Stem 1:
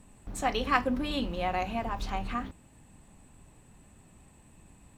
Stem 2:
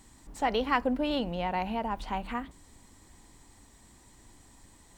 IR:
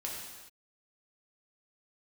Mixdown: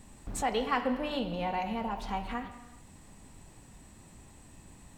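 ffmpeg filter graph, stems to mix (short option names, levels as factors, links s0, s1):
-filter_complex "[0:a]volume=1.19[s0];[1:a]volume=0.447,asplit=3[s1][s2][s3];[s2]volume=0.708[s4];[s3]apad=whole_len=219321[s5];[s0][s5]sidechaincompress=threshold=0.00631:ratio=8:attack=16:release=688[s6];[2:a]atrim=start_sample=2205[s7];[s4][s7]afir=irnorm=-1:irlink=0[s8];[s6][s1][s8]amix=inputs=3:normalize=0"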